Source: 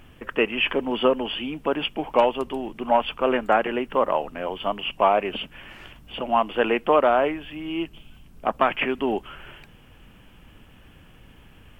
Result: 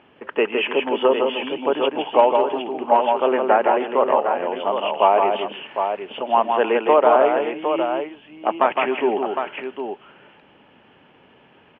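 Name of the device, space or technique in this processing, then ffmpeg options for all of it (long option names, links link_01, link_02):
kitchen radio: -filter_complex "[0:a]highpass=220,equalizer=frequency=410:width_type=q:width=4:gain=6,equalizer=frequency=600:width_type=q:width=4:gain=4,equalizer=frequency=880:width_type=q:width=4:gain=7,lowpass=frequency=3400:width=0.5412,lowpass=frequency=3400:width=1.3066,asettb=1/sr,asplit=3[link_01][link_02][link_03];[link_01]atrim=end=2.724[link_04];[link_02]atrim=start=2.72:end=3.92,asetpts=PTS-STARTPTS,afade=type=in:duration=0.004:curve=qsin,afade=type=out:start_time=1.196:duration=0.004:curve=qsin,acrossover=split=3100[link_05][link_06];[link_06]acompressor=threshold=-45dB:ratio=4:attack=1:release=60[link_07];[link_05][link_07]amix=inputs=2:normalize=0[link_08];[link_03]atrim=start=3.916[link_09];[link_04][link_08]acrossfade=duration=0.004:curve1=hsin:curve2=qsin[link_10];[link_10][link_09]acrossfade=duration=0.004:curve1=qsin:curve2=hsin,aecho=1:1:162|300|759:0.596|0.119|0.447,volume=-1dB"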